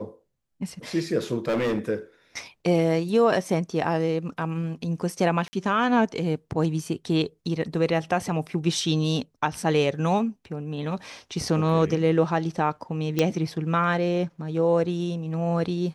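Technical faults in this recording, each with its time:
1.48–1.79 s: clipped -21 dBFS
5.48–5.53 s: dropout 50 ms
13.19 s: pop -9 dBFS

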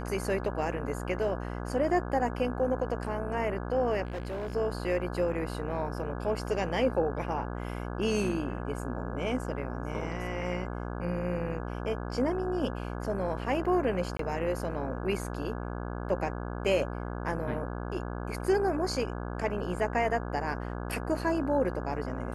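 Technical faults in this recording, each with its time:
buzz 60 Hz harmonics 28 -36 dBFS
4.05–4.56 s: clipped -31.5 dBFS
14.17–14.19 s: dropout 23 ms

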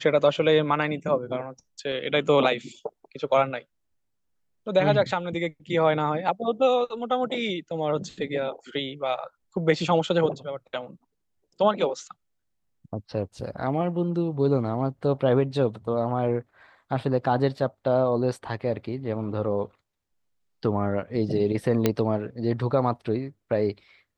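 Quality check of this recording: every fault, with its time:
21.86 s: pop -7 dBFS

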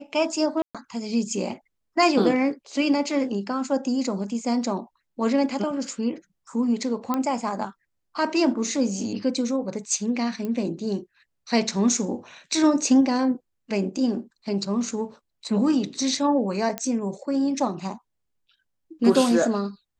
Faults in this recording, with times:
0.62–0.75 s: dropout 126 ms
7.14 s: pop -12 dBFS
10.45 s: pop -19 dBFS
16.78 s: pop -11 dBFS

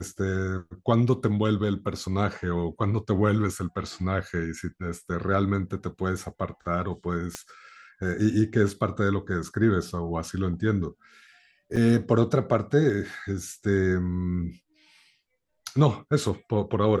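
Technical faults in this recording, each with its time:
7.35 s: pop -17 dBFS
11.76–11.77 s: dropout 5.4 ms

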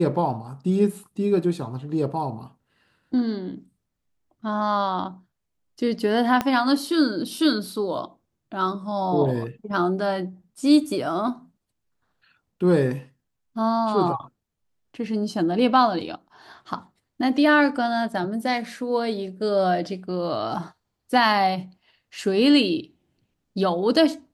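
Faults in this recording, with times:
6.41 s: pop -9 dBFS

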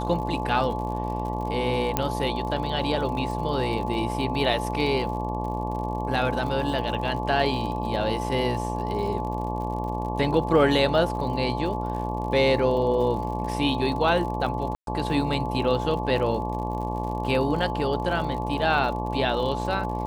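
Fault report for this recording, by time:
buzz 60 Hz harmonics 19 -30 dBFS
crackle 63 per s -34 dBFS
whine 860 Hz -31 dBFS
1.97 s: pop -7 dBFS
14.75–14.87 s: dropout 122 ms

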